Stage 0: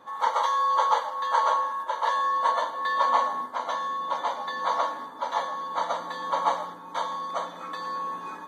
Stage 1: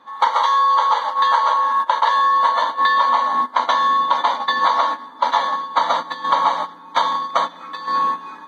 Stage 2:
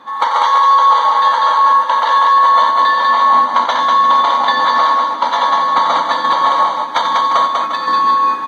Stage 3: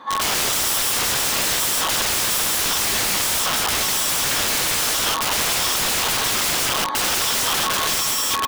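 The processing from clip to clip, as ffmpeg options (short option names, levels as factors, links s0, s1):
-af "agate=range=0.178:threshold=0.0282:ratio=16:detection=peak,equalizer=f=250:t=o:w=1:g=9,equalizer=f=1000:t=o:w=1:g=8,equalizer=f=2000:t=o:w=1:g=7,equalizer=f=4000:t=o:w=1:g=11,acompressor=threshold=0.0891:ratio=12,volume=2.51"
-af "apsyclip=3.35,acompressor=threshold=0.251:ratio=4,aecho=1:1:90|195|350:0.335|0.708|0.299,volume=0.891"
-af "aeval=exprs='(mod(6.31*val(0)+1,2)-1)/6.31':c=same"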